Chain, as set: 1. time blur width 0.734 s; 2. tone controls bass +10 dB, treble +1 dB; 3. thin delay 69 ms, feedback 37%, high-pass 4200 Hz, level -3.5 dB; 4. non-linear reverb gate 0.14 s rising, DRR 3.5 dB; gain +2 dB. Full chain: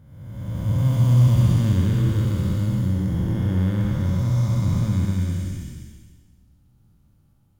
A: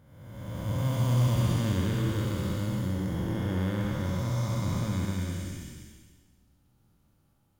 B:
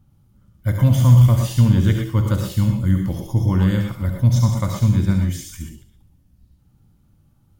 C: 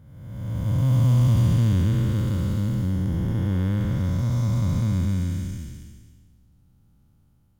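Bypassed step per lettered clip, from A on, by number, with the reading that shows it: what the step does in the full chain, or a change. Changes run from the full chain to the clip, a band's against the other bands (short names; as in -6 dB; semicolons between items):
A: 2, 125 Hz band -9.0 dB; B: 1, 125 Hz band -2.0 dB; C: 4, loudness change -2.0 LU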